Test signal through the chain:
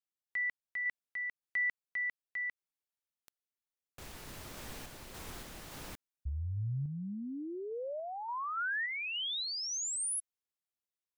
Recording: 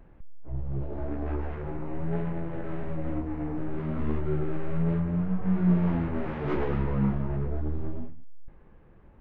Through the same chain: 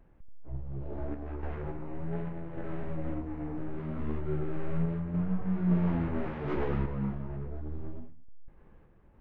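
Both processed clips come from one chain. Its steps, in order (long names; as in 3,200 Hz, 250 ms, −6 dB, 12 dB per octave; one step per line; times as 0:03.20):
sample-and-hold tremolo
level −2 dB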